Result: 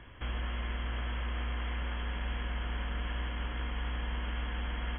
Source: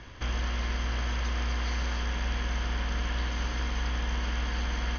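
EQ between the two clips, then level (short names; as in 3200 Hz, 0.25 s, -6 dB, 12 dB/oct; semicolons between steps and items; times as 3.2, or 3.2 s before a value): brick-wall FIR low-pass 3400 Hz; -5.0 dB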